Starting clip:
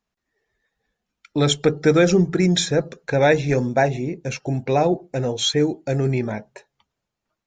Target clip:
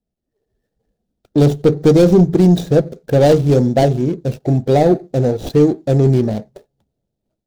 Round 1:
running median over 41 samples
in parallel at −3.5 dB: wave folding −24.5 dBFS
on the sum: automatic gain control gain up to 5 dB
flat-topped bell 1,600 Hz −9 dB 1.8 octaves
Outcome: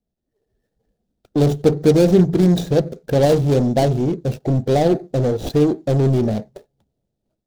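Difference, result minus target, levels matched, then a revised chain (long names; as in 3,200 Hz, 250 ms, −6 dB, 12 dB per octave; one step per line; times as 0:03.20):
wave folding: distortion +26 dB
running median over 41 samples
in parallel at −3.5 dB: wave folding −14.5 dBFS
on the sum: automatic gain control gain up to 5 dB
flat-topped bell 1,600 Hz −9 dB 1.8 octaves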